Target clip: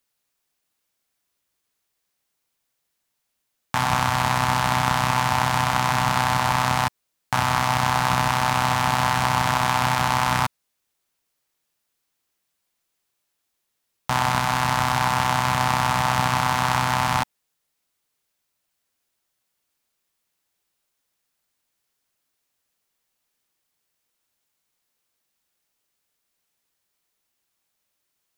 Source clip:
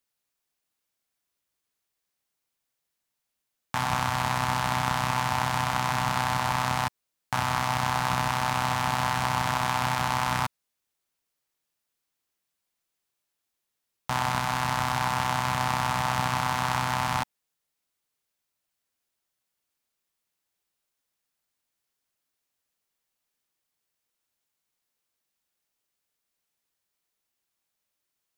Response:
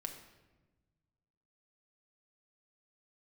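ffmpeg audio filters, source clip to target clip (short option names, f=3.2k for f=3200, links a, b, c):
-af "volume=5.5dB"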